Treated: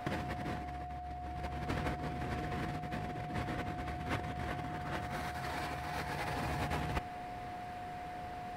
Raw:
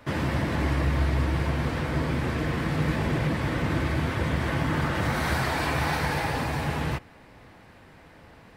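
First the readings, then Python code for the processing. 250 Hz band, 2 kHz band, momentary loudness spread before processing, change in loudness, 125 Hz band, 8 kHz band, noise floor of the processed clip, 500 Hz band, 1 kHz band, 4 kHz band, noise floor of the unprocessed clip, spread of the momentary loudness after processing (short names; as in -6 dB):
-13.5 dB, -12.5 dB, 3 LU, -13.0 dB, -14.5 dB, -12.5 dB, -44 dBFS, -10.5 dB, -7.5 dB, -12.0 dB, -52 dBFS, 7 LU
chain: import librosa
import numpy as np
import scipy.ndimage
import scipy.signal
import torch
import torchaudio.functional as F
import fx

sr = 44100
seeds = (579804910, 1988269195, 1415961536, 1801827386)

y = fx.over_compress(x, sr, threshold_db=-32.0, ratio=-0.5)
y = y + 10.0 ** (-37.0 / 20.0) * np.sin(2.0 * np.pi * 720.0 * np.arange(len(y)) / sr)
y = F.gain(torch.from_numpy(y), -5.5).numpy()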